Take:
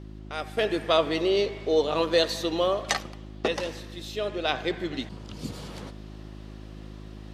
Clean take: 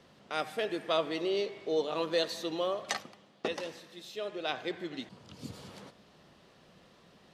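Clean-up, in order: de-hum 52.3 Hz, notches 7; trim 0 dB, from 0.57 s -7.5 dB

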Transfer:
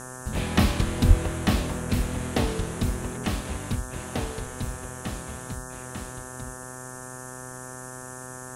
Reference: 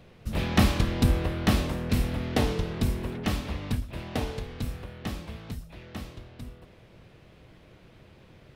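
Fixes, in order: de-hum 127.4 Hz, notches 14; de-plosive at 1.07 s; noise print and reduce 14 dB

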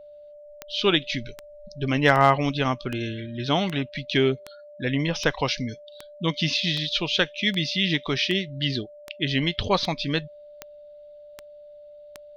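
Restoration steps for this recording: clip repair -7 dBFS; de-click; band-stop 590 Hz, Q 30

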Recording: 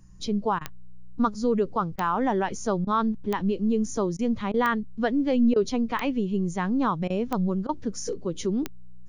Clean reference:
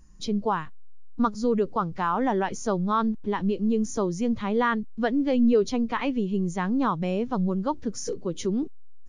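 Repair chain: de-click; de-hum 61 Hz, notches 3; interpolate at 0.59/1.96/2.85/4.17/4.52/5.54/7.08/7.67 s, 19 ms

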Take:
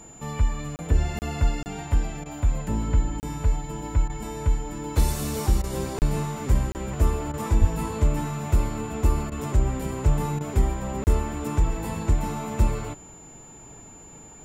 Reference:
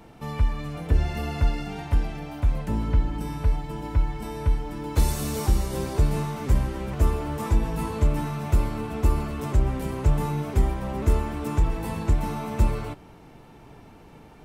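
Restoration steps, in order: band-stop 7.1 kHz, Q 30; de-plosive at 7.60 s; interpolate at 0.76/1.19/1.63/3.20/5.99/6.72/11.04 s, 29 ms; interpolate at 2.24/4.08/5.62/7.32/9.30/10.39 s, 16 ms

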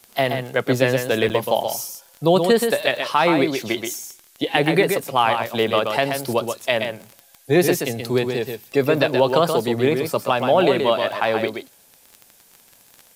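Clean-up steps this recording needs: de-click; interpolate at 1.29 s, 8.6 ms; expander -45 dBFS, range -21 dB; inverse comb 127 ms -6 dB

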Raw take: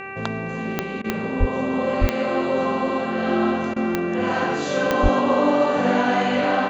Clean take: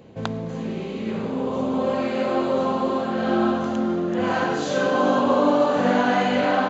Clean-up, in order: de-click; de-hum 389.4 Hz, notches 7; de-plosive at 1.39/2.00/5.02 s; interpolate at 1.02/3.74 s, 21 ms

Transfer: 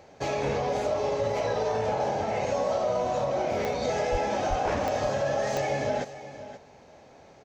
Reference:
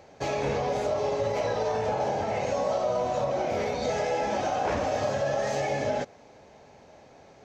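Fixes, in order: clip repair -18 dBFS; de-click; 4.11–4.23 s: high-pass 140 Hz 24 dB/octave; 4.49–4.61 s: high-pass 140 Hz 24 dB/octave; inverse comb 529 ms -14 dB

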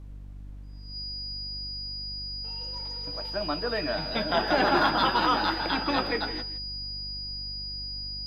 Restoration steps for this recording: de-hum 49.1 Hz, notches 6; band-stop 4.9 kHz, Q 30; noise print and reduce 30 dB; inverse comb 161 ms -14 dB

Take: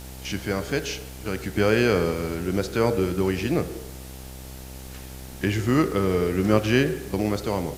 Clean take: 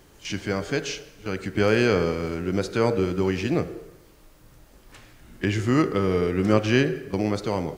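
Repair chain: de-hum 64.7 Hz, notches 14; noise print and reduce 12 dB

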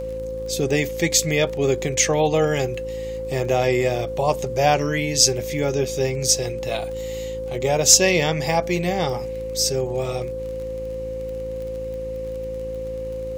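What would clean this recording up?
de-click; de-hum 55.1 Hz, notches 9; band-stop 520 Hz, Q 30

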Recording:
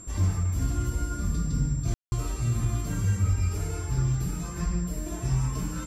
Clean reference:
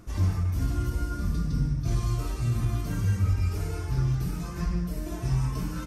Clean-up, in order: band-stop 7.4 kHz, Q 30; room tone fill 1.94–2.12 s

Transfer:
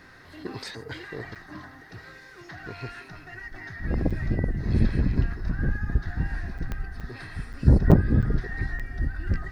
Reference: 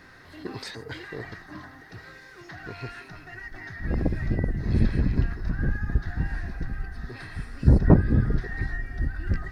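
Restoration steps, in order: de-click; interpolate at 1.35/4.10/6.58/7.00/7.53/7.91/8.22/8.79 s, 6.7 ms

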